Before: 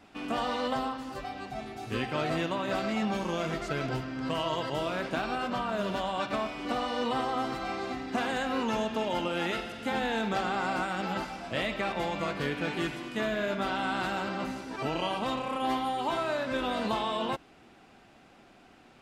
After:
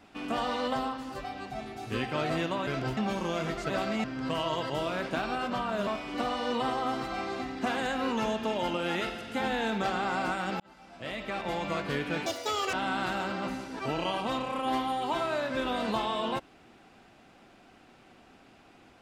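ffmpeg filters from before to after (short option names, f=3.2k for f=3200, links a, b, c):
-filter_complex "[0:a]asplit=9[a][b][c][d][e][f][g][h][i];[a]atrim=end=2.672[j];[b]atrim=start=3.738:end=4.042[k];[c]atrim=start=3.008:end=3.742[l];[d]atrim=start=2.668:end=3.012[m];[e]atrim=start=4.038:end=5.872[n];[f]atrim=start=6.378:end=11.11,asetpts=PTS-STARTPTS,afade=t=out:st=4.728:d=0.004:c=hsin[o];[g]atrim=start=11.11:end=12.774,asetpts=PTS-STARTPTS,afade=t=in:d=1.05[p];[h]atrim=start=12.77:end=13.7,asetpts=PTS-STARTPTS,asetrate=86877,aresample=44100[q];[i]atrim=start=13.696[r];[j][k]acrossfade=d=0.004:c1=hsin:c2=hsin[s];[s][l]acrossfade=d=0.004:c1=hsin:c2=hsin[t];[t][m]acrossfade=d=0.004:c1=hsin:c2=hsin[u];[u][n]acrossfade=d=0.004:c1=hsin:c2=hsin[v];[o][p]concat=n=2:v=0:a=1[w];[v][w]acrossfade=d=0.004:c1=hsin:c2=hsin[x];[x][q]acrossfade=d=0.004:c1=hsin:c2=hsin[y];[y][r]acrossfade=d=0.004:c1=hsin:c2=hsin"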